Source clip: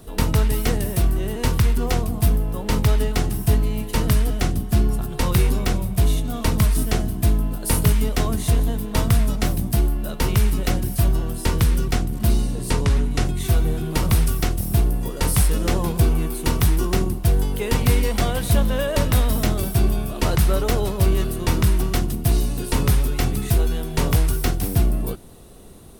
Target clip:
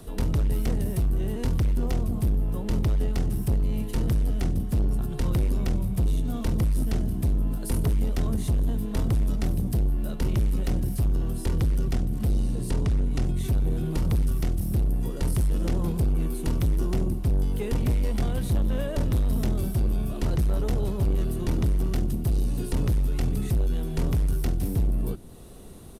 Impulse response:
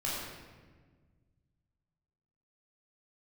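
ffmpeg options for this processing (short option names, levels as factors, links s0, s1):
-filter_complex "[0:a]acrossover=split=380[s0][s1];[s1]acompressor=threshold=0.002:ratio=1.5[s2];[s0][s2]amix=inputs=2:normalize=0,asoftclip=type=tanh:threshold=0.112,aresample=32000,aresample=44100"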